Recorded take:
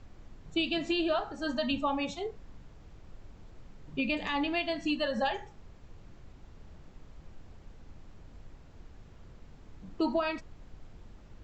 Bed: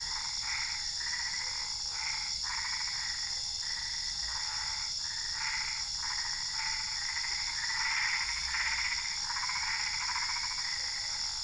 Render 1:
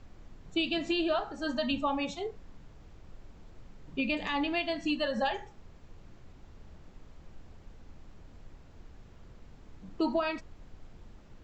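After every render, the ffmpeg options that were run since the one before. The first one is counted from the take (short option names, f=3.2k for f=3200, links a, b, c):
-af "bandreject=f=50:t=h:w=4,bandreject=f=100:t=h:w=4,bandreject=f=150:t=h:w=4"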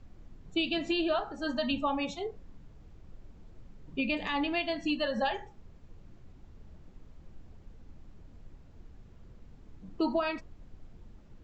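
-af "afftdn=nr=6:nf=-54"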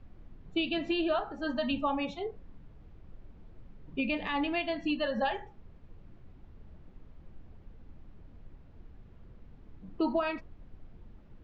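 -af "lowpass=3.4k"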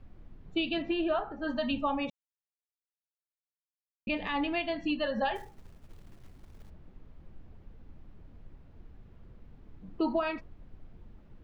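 -filter_complex "[0:a]asettb=1/sr,asplit=3[a][b][c];[a]atrim=end=0.824[d];[b]atrim=start=0.82:end=1.48,asetpts=PTS-STARTPTS,afade=t=in:d=0.004:c=qsin,afade=t=out:st=0.656:d=0.004:c=qsin,lowpass=2.8k[e];[c]atrim=start=1.476[f];[d][e]acrossfade=d=0.004:c1=hsin:c2=qsin[g];[g][f]acrossfade=d=0.004:c1=qsin:c2=hsin,asplit=3[h][i][j];[h]afade=t=out:st=5.35:d=0.02[k];[i]acrusher=bits=4:mode=log:mix=0:aa=0.000001,afade=t=in:st=5.35:d=0.02,afade=t=out:st=6.69:d=0.02[l];[j]afade=t=in:st=6.69:d=0.02[m];[k][l][m]amix=inputs=3:normalize=0,asplit=3[n][o][p];[n]atrim=end=2.1,asetpts=PTS-STARTPTS,afade=t=out:st=2.096:d=0.004:c=hsin[q];[o]atrim=start=2.1:end=4.07,asetpts=PTS-STARTPTS,volume=0[r];[p]atrim=start=4.07,asetpts=PTS-STARTPTS,afade=t=in:d=0.004:c=hsin[s];[q][r][s]concat=n=3:v=0:a=1"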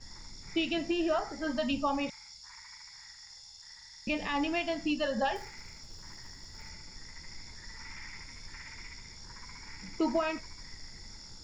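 -filter_complex "[1:a]volume=-15.5dB[a];[0:a][a]amix=inputs=2:normalize=0"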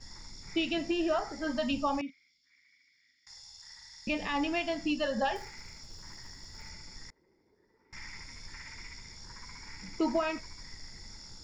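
-filter_complex "[0:a]asettb=1/sr,asplit=3[a][b][c];[a]atrim=end=2.014[d];[b]atrim=start=2.01:end=3.27,asetpts=PTS-STARTPTS,afade=t=in:d=0.004:c=qsin,afade=t=out:st=1.256:d=0.004:c=qsin,asplit=3[e][f][g];[e]bandpass=f=270:t=q:w=8,volume=0dB[h];[f]bandpass=f=2.29k:t=q:w=8,volume=-6dB[i];[g]bandpass=f=3.01k:t=q:w=8,volume=-9dB[j];[h][i][j]amix=inputs=3:normalize=0[k];[c]atrim=start=3.266[l];[d][k]acrossfade=d=0.004:c1=hsin:c2=qsin[m];[m][l]acrossfade=d=0.004:c1=qsin:c2=hsin,asettb=1/sr,asplit=3[n][o][p];[n]atrim=end=7.104[q];[o]atrim=start=7.1:end=7.93,asetpts=PTS-STARTPTS,afade=t=in:d=0.004:c=qsin,afade=t=out:st=0.826:d=0.004:c=qsin,bandpass=f=400:t=q:w=4.3[r];[p]atrim=start=7.926[s];[q][r]acrossfade=d=0.004:c1=hsin:c2=qsin[t];[t][s]acrossfade=d=0.004:c1=qsin:c2=hsin"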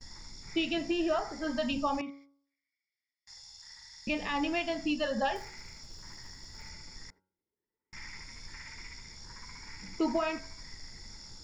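-af "agate=range=-23dB:threshold=-57dB:ratio=16:detection=peak,bandreject=f=93.07:t=h:w=4,bandreject=f=186.14:t=h:w=4,bandreject=f=279.21:t=h:w=4,bandreject=f=372.28:t=h:w=4,bandreject=f=465.35:t=h:w=4,bandreject=f=558.42:t=h:w=4,bandreject=f=651.49:t=h:w=4,bandreject=f=744.56:t=h:w=4,bandreject=f=837.63:t=h:w=4,bandreject=f=930.7:t=h:w=4,bandreject=f=1.02377k:t=h:w=4,bandreject=f=1.11684k:t=h:w=4,bandreject=f=1.20991k:t=h:w=4,bandreject=f=1.30298k:t=h:w=4,bandreject=f=1.39605k:t=h:w=4,bandreject=f=1.48912k:t=h:w=4,bandreject=f=1.58219k:t=h:w=4"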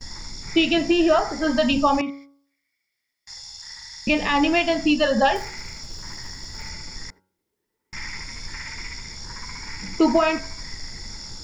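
-af "volume=12dB"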